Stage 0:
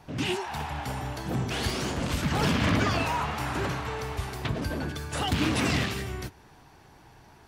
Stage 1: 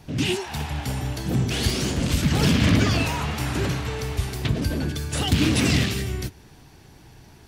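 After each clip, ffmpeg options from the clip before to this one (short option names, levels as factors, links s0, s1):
-af "equalizer=f=1000:w=0.65:g=-10.5,volume=2.51"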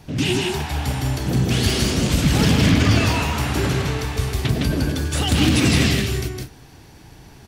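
-filter_complex "[0:a]asplit=2[s0][s1];[s1]aecho=0:1:160.3|198.3:0.708|0.251[s2];[s0][s2]amix=inputs=2:normalize=0,alimiter=level_in=2.37:limit=0.891:release=50:level=0:latency=1,volume=0.562"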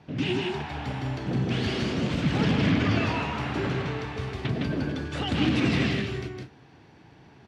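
-af "highpass=120,lowpass=3000,volume=0.531"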